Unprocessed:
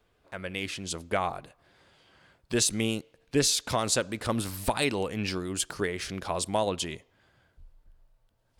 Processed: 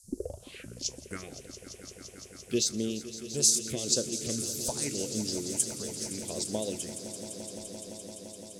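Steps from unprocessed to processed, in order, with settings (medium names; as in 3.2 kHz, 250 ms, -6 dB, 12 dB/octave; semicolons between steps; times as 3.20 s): tape start-up on the opening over 1.21 s; phase shifter stages 4, 0.81 Hz, lowest notch 320–2300 Hz; transient shaper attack +4 dB, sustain -2 dB; frequency weighting D; band noise 4.3–11 kHz -55 dBFS; high-order bell 1.8 kHz -14.5 dB 2.9 oct; feedback comb 72 Hz, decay 0.16 s, harmonics all, mix 50%; echo with a slow build-up 171 ms, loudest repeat 5, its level -14.5 dB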